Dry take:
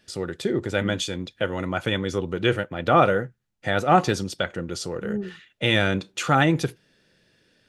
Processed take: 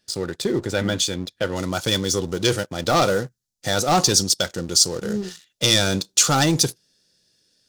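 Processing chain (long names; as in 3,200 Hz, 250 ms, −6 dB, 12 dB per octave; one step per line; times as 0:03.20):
leveller curve on the samples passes 2
high shelf with overshoot 3,500 Hz +6 dB, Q 1.5, from 0:01.56 +14 dB
level −5 dB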